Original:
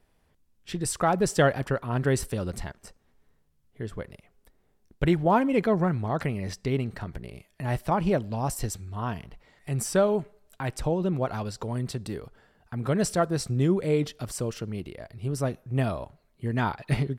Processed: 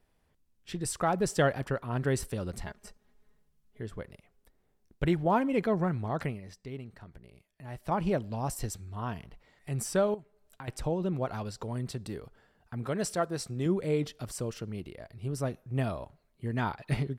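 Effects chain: 2.66–3.81 comb 4.8 ms, depth 81%; 6.28–7.93 dip -9.5 dB, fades 0.13 s; 10.14–10.68 compressor 5:1, threshold -38 dBFS, peak gain reduction 14 dB; 12.84–13.66 low shelf 180 Hz -8.5 dB; gain -4.5 dB

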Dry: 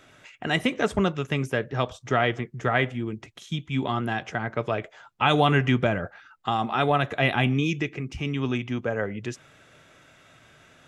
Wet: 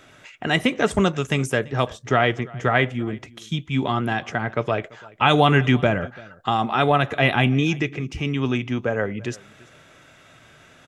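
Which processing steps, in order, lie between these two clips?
0.91–1.59 bell 8300 Hz +11.5 dB 0.99 oct; echo 0.338 s -23 dB; gain +4 dB

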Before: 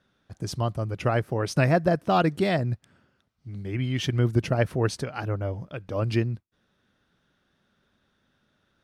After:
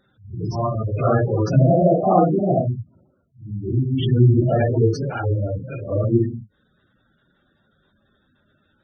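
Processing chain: phase scrambler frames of 0.2 s; 1.57–3.98 band shelf 3800 Hz -16 dB 2.8 oct; spectral gate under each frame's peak -15 dB strong; gain +7.5 dB

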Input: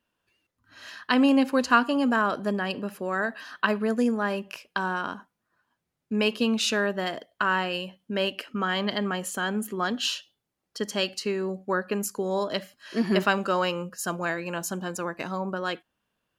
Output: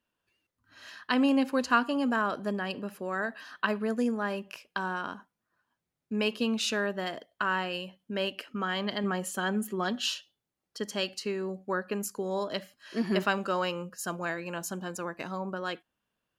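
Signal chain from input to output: 9.03–10.14 comb 5.3 ms, depth 59%; gain -4.5 dB

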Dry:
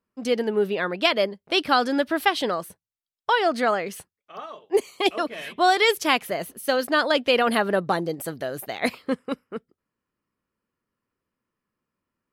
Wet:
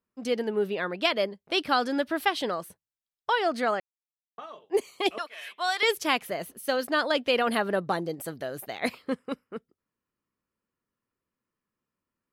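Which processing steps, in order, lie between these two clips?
3.8–4.38 mute; 5.18–5.83 HPF 1000 Hz 12 dB/oct; gain -4.5 dB

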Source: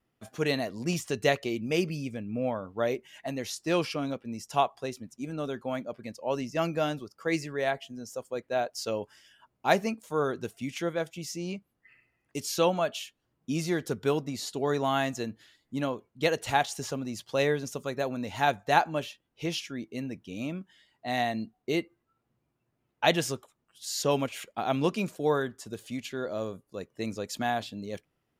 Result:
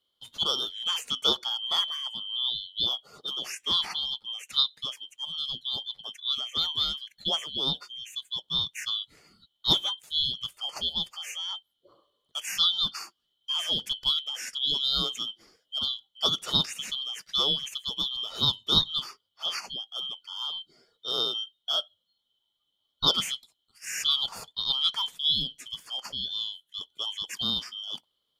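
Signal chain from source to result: four-band scrambler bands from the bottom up 2413

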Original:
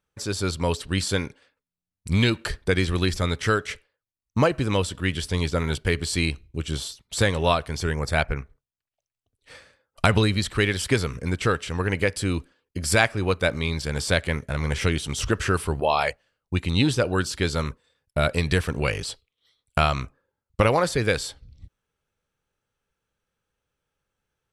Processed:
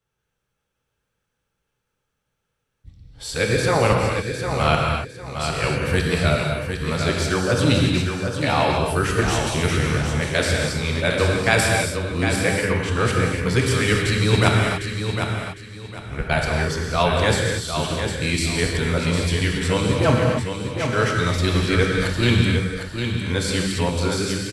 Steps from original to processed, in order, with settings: whole clip reversed; feedback echo 0.755 s, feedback 27%, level -7 dB; non-linear reverb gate 0.31 s flat, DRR -0.5 dB

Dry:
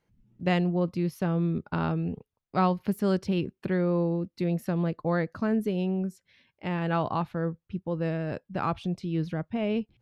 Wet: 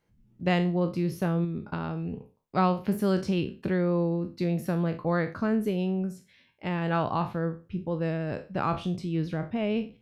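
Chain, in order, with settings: spectral trails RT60 0.32 s; 1.44–2.13 compressor, threshold -29 dBFS, peak gain reduction 6 dB

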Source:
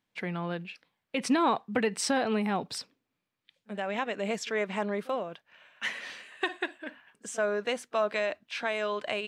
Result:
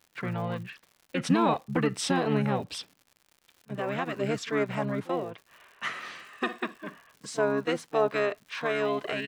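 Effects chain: harmonic-percussive split percussive -3 dB; harmoniser -7 st -1 dB; crackle 140/s -44 dBFS

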